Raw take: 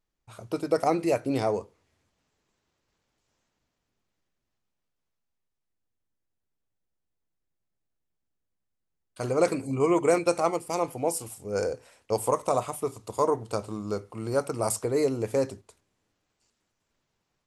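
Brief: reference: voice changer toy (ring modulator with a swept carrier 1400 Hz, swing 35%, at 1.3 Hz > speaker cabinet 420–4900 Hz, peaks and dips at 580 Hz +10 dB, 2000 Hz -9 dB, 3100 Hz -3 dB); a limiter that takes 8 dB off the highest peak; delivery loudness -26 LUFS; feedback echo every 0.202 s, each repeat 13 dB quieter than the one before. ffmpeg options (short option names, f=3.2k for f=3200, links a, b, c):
-af "alimiter=limit=-17dB:level=0:latency=1,aecho=1:1:202|404|606:0.224|0.0493|0.0108,aeval=exprs='val(0)*sin(2*PI*1400*n/s+1400*0.35/1.3*sin(2*PI*1.3*n/s))':c=same,highpass=420,equalizer=f=580:t=q:w=4:g=10,equalizer=f=2k:t=q:w=4:g=-9,equalizer=f=3.1k:t=q:w=4:g=-3,lowpass=f=4.9k:w=0.5412,lowpass=f=4.9k:w=1.3066,volume=6.5dB"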